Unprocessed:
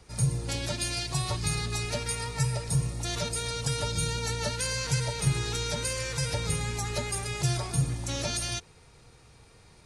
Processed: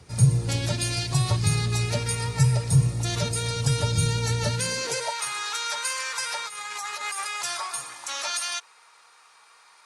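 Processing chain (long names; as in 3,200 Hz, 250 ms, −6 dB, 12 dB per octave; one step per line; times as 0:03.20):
0:06.46–0:07.25: compressor whose output falls as the input rises −34 dBFS, ratio −1
high-pass filter sweep 97 Hz → 1,100 Hz, 0:04.52–0:05.18
level +3 dB
Opus 64 kbit/s 48,000 Hz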